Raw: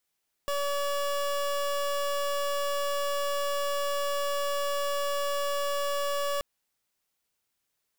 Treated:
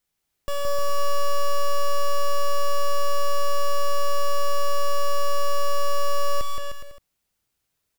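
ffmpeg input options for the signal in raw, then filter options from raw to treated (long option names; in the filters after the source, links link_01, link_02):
-f lavfi -i "aevalsrc='0.0355*(2*lt(mod(570*t,1),0.27)-1)':duration=5.93:sample_rate=44100"
-af "lowshelf=frequency=190:gain=11.5,aecho=1:1:170|306|414.8|501.8|571.5:0.631|0.398|0.251|0.158|0.1"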